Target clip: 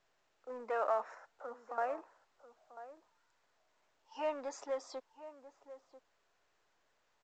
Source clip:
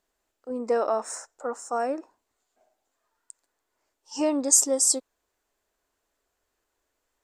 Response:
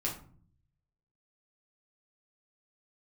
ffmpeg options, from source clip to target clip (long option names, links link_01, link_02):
-filter_complex "[0:a]asettb=1/sr,asplit=3[link_01][link_02][link_03];[link_01]atrim=end=1.144[link_04];[link_02]atrim=start=1.14:end=1.78,asetpts=PTS-STARTPTS,afade=type=in:duration=0.004:curve=qsin,afade=type=out:start_time=0.636:duration=0.004:curve=qsin,acrossover=split=350[link_05][link_06];[link_06]acompressor=threshold=-41dB:ratio=3[link_07];[link_05][link_07]amix=inputs=2:normalize=0[link_08];[link_03]atrim=start=1.776[link_09];[link_04][link_08]acrossfade=duration=0.004:curve1=hsin:curve2=qsin[link_10];[link_10][link_09]acrossfade=duration=0.004:curve1=qsin:curve2=hsin,acrossover=split=580[link_11][link_12];[link_11]asoftclip=type=tanh:threshold=-35.5dB[link_13];[link_13][link_12]amix=inputs=2:normalize=0,lowpass=4300,acrossover=split=450 3100:gain=0.178 1 0.0708[link_14][link_15][link_16];[link_14][link_15][link_16]amix=inputs=3:normalize=0,asplit=2[link_17][link_18];[link_18]adelay=991.3,volume=-14dB,highshelf=frequency=4000:gain=-22.3[link_19];[link_17][link_19]amix=inputs=2:normalize=0,volume=-4dB" -ar 16000 -c:a pcm_mulaw